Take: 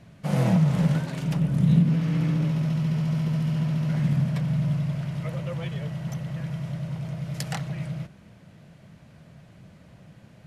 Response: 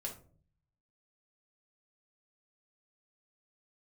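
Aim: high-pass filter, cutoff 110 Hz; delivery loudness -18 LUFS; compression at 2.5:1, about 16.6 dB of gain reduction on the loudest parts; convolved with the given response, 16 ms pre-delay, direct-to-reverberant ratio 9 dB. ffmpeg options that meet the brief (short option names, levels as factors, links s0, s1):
-filter_complex "[0:a]highpass=110,acompressor=threshold=0.00794:ratio=2.5,asplit=2[s0][s1];[1:a]atrim=start_sample=2205,adelay=16[s2];[s1][s2]afir=irnorm=-1:irlink=0,volume=0.398[s3];[s0][s3]amix=inputs=2:normalize=0,volume=11.2"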